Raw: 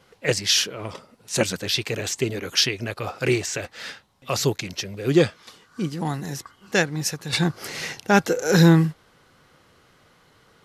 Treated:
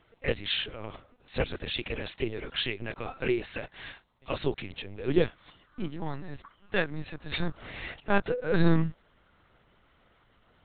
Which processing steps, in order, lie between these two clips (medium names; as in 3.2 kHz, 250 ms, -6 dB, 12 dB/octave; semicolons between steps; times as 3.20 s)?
LPC vocoder at 8 kHz pitch kept; trim -6.5 dB